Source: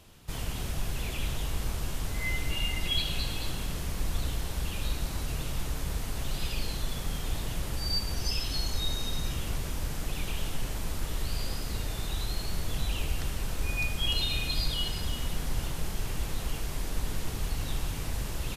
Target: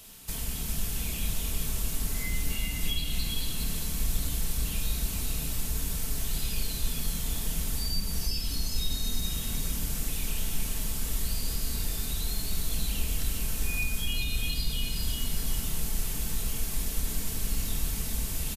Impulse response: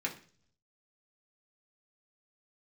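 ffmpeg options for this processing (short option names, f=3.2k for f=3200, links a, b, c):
-filter_complex "[0:a]crystalizer=i=3.5:c=0,acrossover=split=320[a][b];[b]acompressor=threshold=-36dB:ratio=4[c];[a][c]amix=inputs=2:normalize=0,aecho=1:1:4.5:0.38,aecho=1:1:405:0.531,asplit=2[d][e];[1:a]atrim=start_sample=2205,highshelf=f=10k:g=9,adelay=26[f];[e][f]afir=irnorm=-1:irlink=0,volume=-10dB[g];[d][g]amix=inputs=2:normalize=0,volume=-1.5dB"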